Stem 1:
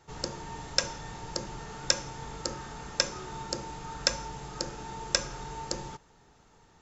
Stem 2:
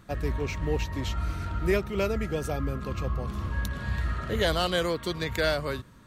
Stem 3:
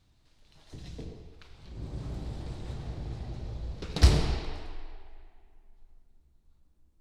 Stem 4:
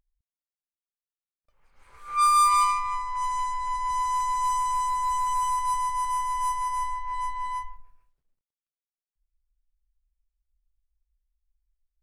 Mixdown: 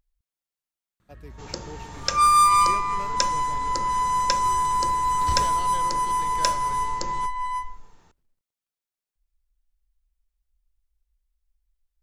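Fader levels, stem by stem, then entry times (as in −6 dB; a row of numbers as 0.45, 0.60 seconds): +0.5, −14.0, −10.5, +3.0 decibels; 1.30, 1.00, 1.25, 0.00 seconds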